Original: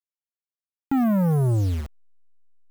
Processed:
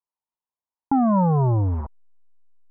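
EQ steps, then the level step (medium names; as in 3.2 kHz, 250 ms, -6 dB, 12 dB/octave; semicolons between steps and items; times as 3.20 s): resonant low-pass 960 Hz, resonance Q 6.9; distance through air 460 m; +1.0 dB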